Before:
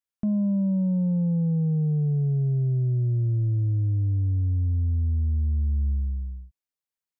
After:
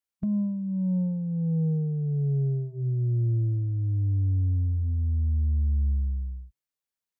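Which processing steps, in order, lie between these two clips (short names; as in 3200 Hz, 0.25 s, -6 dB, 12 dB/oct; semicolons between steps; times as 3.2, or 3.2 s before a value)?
formant shift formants -2 st; de-hum 130.8 Hz, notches 3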